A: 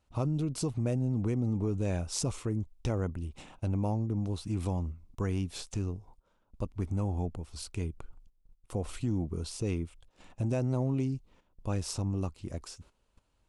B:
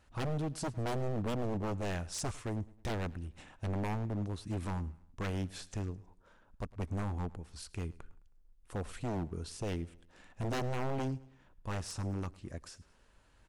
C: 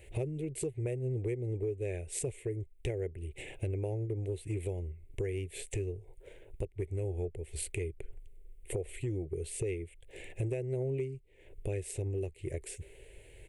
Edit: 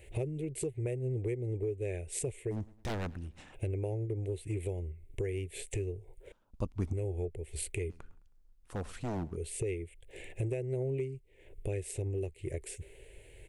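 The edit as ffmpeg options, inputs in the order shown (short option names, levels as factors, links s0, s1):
-filter_complex "[1:a]asplit=2[s0][s1];[2:a]asplit=4[s2][s3][s4][s5];[s2]atrim=end=2.54[s6];[s0]atrim=start=2.5:end=3.56[s7];[s3]atrim=start=3.52:end=6.322[s8];[0:a]atrim=start=6.318:end=6.932[s9];[s4]atrim=start=6.928:end=7.902[s10];[s1]atrim=start=7.898:end=9.362[s11];[s5]atrim=start=9.358[s12];[s6][s7]acrossfade=d=0.04:c1=tri:c2=tri[s13];[s13][s8]acrossfade=d=0.04:c1=tri:c2=tri[s14];[s14][s9]acrossfade=d=0.004:c1=hsin:c2=hsin[s15];[s15][s10]acrossfade=d=0.004:c1=hsin:c2=hsin[s16];[s16][s11]acrossfade=d=0.004:c1=hsin:c2=hsin[s17];[s17][s12]acrossfade=d=0.004:c1=hsin:c2=hsin"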